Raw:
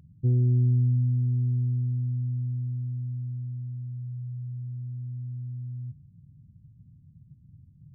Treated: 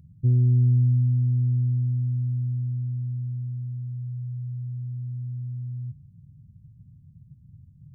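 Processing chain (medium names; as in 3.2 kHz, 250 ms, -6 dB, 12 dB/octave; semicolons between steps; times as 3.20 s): tone controls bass +8 dB, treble +5 dB; trim -4.5 dB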